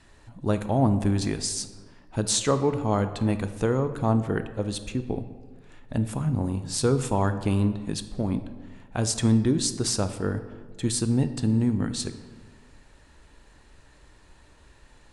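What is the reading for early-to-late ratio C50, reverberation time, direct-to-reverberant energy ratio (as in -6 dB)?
11.5 dB, 1.6 s, 10.0 dB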